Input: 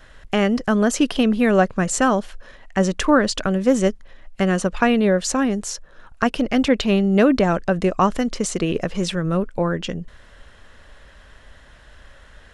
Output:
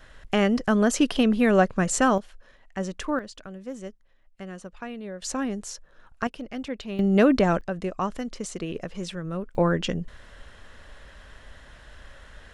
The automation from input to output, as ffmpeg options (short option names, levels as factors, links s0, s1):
-af "asetnsamples=n=441:p=0,asendcmd='2.18 volume volume -11.5dB;3.19 volume volume -19.5dB;5.22 volume volume -8.5dB;6.27 volume volume -15.5dB;6.99 volume volume -3dB;7.61 volume volume -10.5dB;9.55 volume volume -0.5dB',volume=0.708"